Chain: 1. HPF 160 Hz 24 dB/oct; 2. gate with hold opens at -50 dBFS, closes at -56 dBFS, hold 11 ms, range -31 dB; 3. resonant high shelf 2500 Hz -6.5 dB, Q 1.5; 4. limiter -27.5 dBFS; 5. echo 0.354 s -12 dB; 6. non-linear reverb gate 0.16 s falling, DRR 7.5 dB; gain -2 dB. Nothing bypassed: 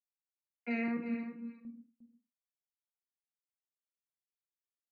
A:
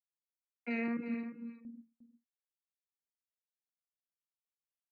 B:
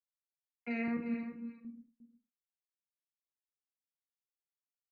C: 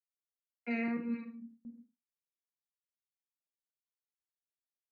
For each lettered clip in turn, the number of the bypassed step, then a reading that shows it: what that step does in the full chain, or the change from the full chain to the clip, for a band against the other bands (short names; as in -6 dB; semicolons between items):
6, echo-to-direct -6.0 dB to -12.0 dB; 1, 125 Hz band +1.5 dB; 5, echo-to-direct -6.0 dB to -7.5 dB